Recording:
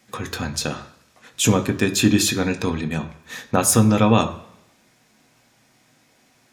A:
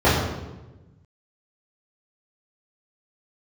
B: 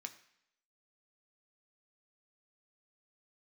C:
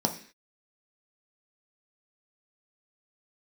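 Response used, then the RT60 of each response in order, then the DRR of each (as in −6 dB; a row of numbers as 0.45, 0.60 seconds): B; 1.1, 0.75, 0.45 seconds; −12.5, 5.5, 3.0 decibels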